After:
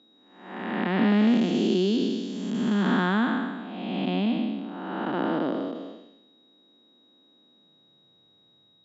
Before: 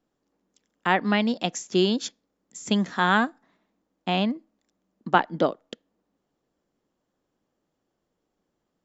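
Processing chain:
spectrum smeared in time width 484 ms
high-pass filter sweep 250 Hz → 110 Hz, 0:07.37–0:08.23
in parallel at +0.5 dB: downward compressor, threshold −39 dBFS, peak gain reduction 15.5 dB
on the sum: dynamic equaliser 810 Hz, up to −4 dB, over −41 dBFS, Q 0.76
steady tone 3,800 Hz −60 dBFS
high-frequency loss of the air 130 metres
level +4 dB

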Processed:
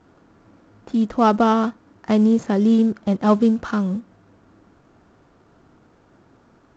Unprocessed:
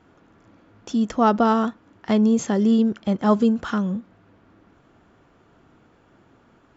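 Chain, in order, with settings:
running median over 15 samples
level +2 dB
A-law companding 128 kbit/s 16,000 Hz

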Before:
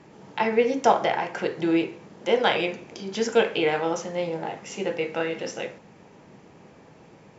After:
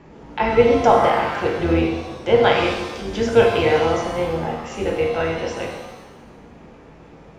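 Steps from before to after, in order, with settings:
sub-octave generator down 2 octaves, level −5 dB
high-shelf EQ 5,000 Hz −12 dB
floating-point word with a short mantissa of 8 bits
reverb with rising layers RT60 1.1 s, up +7 semitones, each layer −8 dB, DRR 1.5 dB
level +3.5 dB

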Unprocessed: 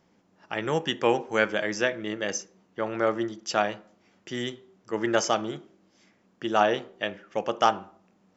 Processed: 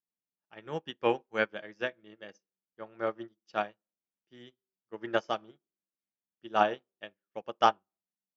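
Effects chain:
low-pass filter 5,100 Hz 24 dB per octave
notch filter 2,000 Hz, Q 20
expander for the loud parts 2.5 to 1, over −45 dBFS

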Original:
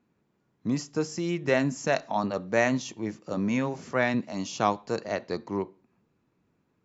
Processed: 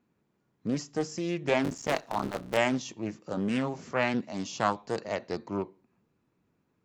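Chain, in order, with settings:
0:01.64–0:02.57: sub-harmonics by changed cycles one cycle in 3, muted
highs frequency-modulated by the lows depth 0.36 ms
level −2 dB

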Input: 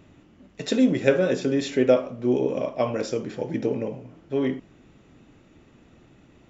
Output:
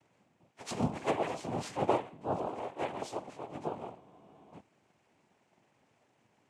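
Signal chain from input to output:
partials spread apart or drawn together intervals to 92%
high-pass filter 320 Hz 12 dB per octave
cochlear-implant simulation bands 4
frozen spectrum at 0:04.02, 0.53 s
level −8 dB

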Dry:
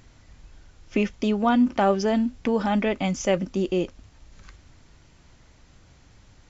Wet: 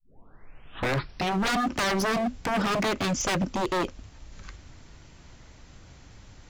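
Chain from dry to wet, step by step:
turntable start at the beginning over 1.45 s
wave folding −24.5 dBFS
level +4 dB

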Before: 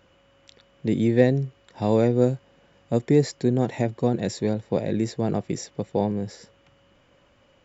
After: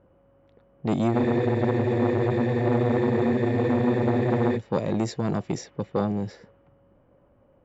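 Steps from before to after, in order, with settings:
low-pass that shuts in the quiet parts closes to 770 Hz, open at −20.5 dBFS
frozen spectrum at 0:01.15, 3.41 s
saturating transformer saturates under 610 Hz
level +1.5 dB

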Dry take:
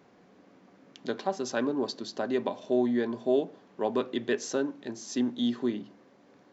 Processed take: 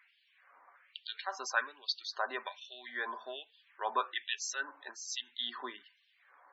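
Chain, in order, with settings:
auto-filter high-pass sine 1.2 Hz 990–3,100 Hz
spectral peaks only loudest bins 64

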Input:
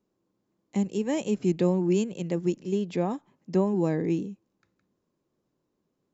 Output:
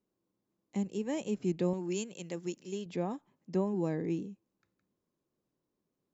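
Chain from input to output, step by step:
0:01.73–0:02.86: spectral tilt +2.5 dB per octave
level −7 dB

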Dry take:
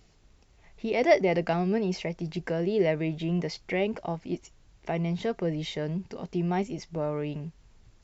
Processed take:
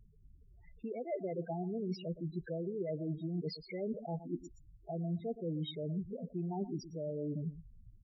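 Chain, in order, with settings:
reversed playback
downward compressor 16 to 1, threshold −34 dBFS, peak gain reduction 20 dB
reversed playback
single-tap delay 118 ms −12.5 dB
spectral peaks only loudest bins 8

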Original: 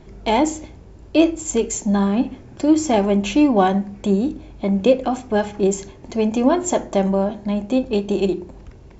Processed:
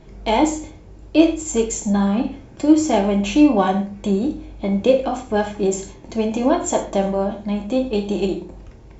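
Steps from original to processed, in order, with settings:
reverb whose tail is shaped and stops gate 160 ms falling, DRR 3.5 dB
level −1.5 dB

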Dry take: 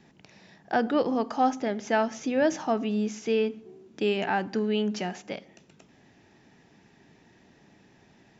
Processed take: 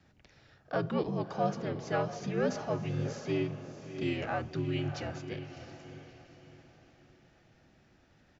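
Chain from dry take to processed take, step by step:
feedback delay with all-pass diffusion 655 ms, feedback 40%, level −10 dB
pitch-shifted copies added −4 semitones −3 dB
frequency shifter −62 Hz
level −8.5 dB

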